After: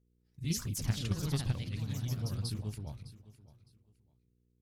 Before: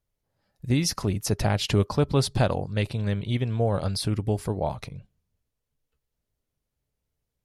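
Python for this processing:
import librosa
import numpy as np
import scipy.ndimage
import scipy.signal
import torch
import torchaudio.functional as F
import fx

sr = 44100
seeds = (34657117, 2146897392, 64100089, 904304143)

p1 = fx.echo_pitch(x, sr, ms=116, semitones=2, count=3, db_per_echo=-3.0)
p2 = fx.level_steps(p1, sr, step_db=18)
p3 = p1 + F.gain(torch.from_numpy(p2), -2.5).numpy()
p4 = fx.stretch_grains(p3, sr, factor=0.62, grain_ms=141.0)
p5 = fx.dmg_buzz(p4, sr, base_hz=60.0, harmonics=8, level_db=-60.0, tilt_db=-1, odd_only=False)
p6 = fx.tone_stack(p5, sr, knobs='6-0-2')
p7 = p6 + fx.echo_feedback(p6, sr, ms=609, feedback_pct=24, wet_db=-18.0, dry=0)
y = F.gain(torch.from_numpy(p7), 3.0).numpy()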